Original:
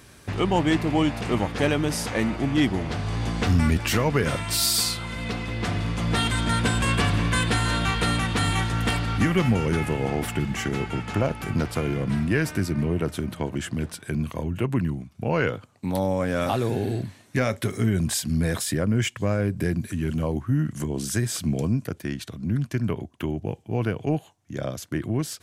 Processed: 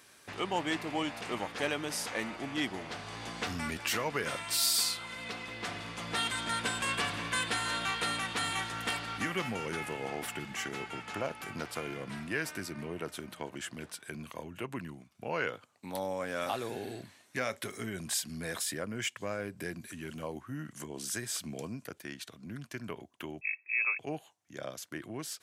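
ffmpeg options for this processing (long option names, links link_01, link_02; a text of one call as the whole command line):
ffmpeg -i in.wav -filter_complex "[0:a]asettb=1/sr,asplit=3[link_01][link_02][link_03];[link_01]atrim=end=23.414[link_04];[link_02]atrim=start=23.41:end=23.99,asetpts=PTS-STARTPTS,afade=type=in:duration=0.004:curve=qsin,afade=type=out:start_time=0.576:duration=0.004:curve=qsin,lowpass=frequency=2300:width_type=q:width=0.5098,lowpass=frequency=2300:width_type=q:width=0.6013,lowpass=frequency=2300:width_type=q:width=0.9,lowpass=frequency=2300:width_type=q:width=2.563,afreqshift=-2700[link_05];[link_03]atrim=start=23.986[link_06];[link_04][link_05]acrossfade=duration=0.004:curve1=hsin:curve2=qsin[link_07];[link_07][link_06]acrossfade=duration=0.004:curve1=qsin:curve2=hsin,highpass=frequency=730:poles=1,volume=-5.5dB" out.wav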